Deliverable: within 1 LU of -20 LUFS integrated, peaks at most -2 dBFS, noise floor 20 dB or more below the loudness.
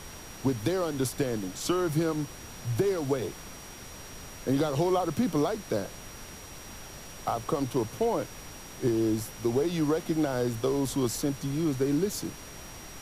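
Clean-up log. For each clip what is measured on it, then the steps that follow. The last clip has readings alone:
steady tone 5.7 kHz; tone level -50 dBFS; noise floor -45 dBFS; noise floor target -50 dBFS; loudness -29.5 LUFS; peak level -15.0 dBFS; loudness target -20.0 LUFS
-> band-stop 5.7 kHz, Q 30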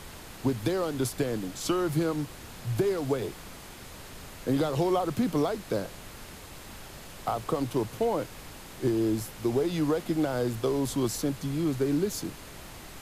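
steady tone not found; noise floor -46 dBFS; noise floor target -50 dBFS
-> noise print and reduce 6 dB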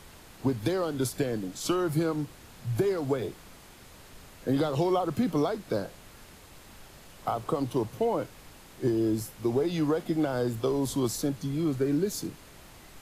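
noise floor -51 dBFS; loudness -29.5 LUFS; peak level -15.0 dBFS; loudness target -20.0 LUFS
-> trim +9.5 dB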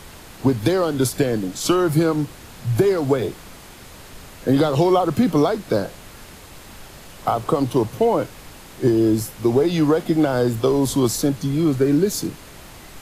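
loudness -20.0 LUFS; peak level -5.5 dBFS; noise floor -42 dBFS

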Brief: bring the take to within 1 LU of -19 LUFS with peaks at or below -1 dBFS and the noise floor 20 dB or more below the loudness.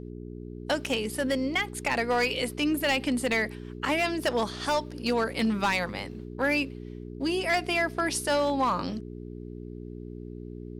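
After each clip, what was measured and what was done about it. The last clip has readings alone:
clipped samples 1.2%; clipping level -19.5 dBFS; hum 60 Hz; highest harmonic 420 Hz; hum level -38 dBFS; loudness -27.5 LUFS; peak level -19.5 dBFS; loudness target -19.0 LUFS
-> clip repair -19.5 dBFS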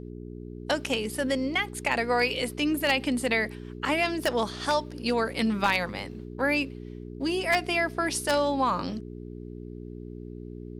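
clipped samples 0.0%; hum 60 Hz; highest harmonic 420 Hz; hum level -38 dBFS
-> de-hum 60 Hz, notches 7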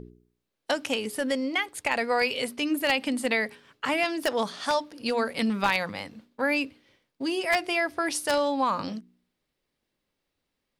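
hum not found; loudness -27.5 LUFS; peak level -10.0 dBFS; loudness target -19.0 LUFS
-> trim +8.5 dB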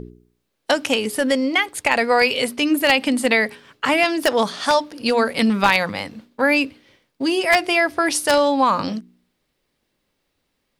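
loudness -19.0 LUFS; peak level -1.5 dBFS; noise floor -73 dBFS

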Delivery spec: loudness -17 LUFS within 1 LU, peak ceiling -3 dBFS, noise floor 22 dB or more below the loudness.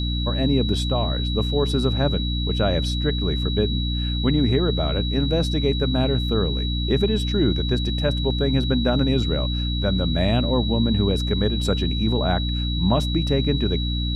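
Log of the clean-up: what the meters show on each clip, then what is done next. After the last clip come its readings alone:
hum 60 Hz; highest harmonic 300 Hz; hum level -22 dBFS; steady tone 3.9 kHz; tone level -29 dBFS; loudness -22.0 LUFS; peak level -7.0 dBFS; loudness target -17.0 LUFS
-> de-hum 60 Hz, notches 5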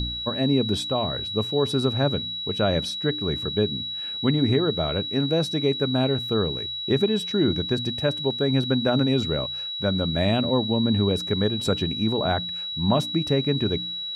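hum not found; steady tone 3.9 kHz; tone level -29 dBFS
-> band-stop 3.9 kHz, Q 30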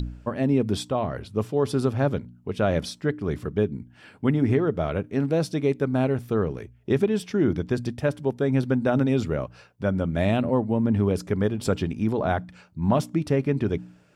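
steady tone not found; loudness -25.0 LUFS; peak level -9.5 dBFS; loudness target -17.0 LUFS
-> trim +8 dB; peak limiter -3 dBFS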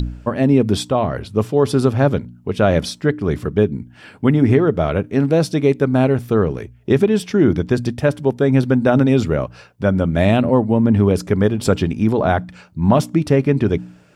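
loudness -17.5 LUFS; peak level -3.0 dBFS; noise floor -47 dBFS

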